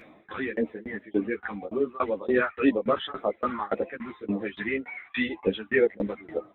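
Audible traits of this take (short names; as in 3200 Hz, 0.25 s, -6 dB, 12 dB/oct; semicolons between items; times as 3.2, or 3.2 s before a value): phasing stages 2, 1.9 Hz, lowest notch 480–1500 Hz; tremolo saw down 3.5 Hz, depth 100%; a shimmering, thickened sound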